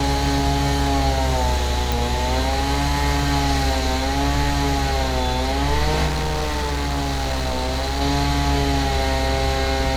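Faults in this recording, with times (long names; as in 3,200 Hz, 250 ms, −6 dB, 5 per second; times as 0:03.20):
0:01.92: click
0:06.06–0:08.02: clipping −19.5 dBFS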